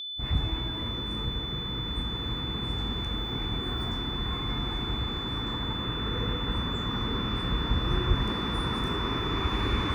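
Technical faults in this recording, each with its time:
whine 3.5 kHz -34 dBFS

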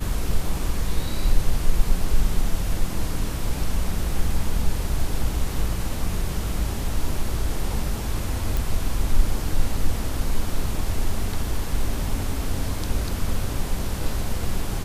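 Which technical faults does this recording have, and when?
8.57 s: pop

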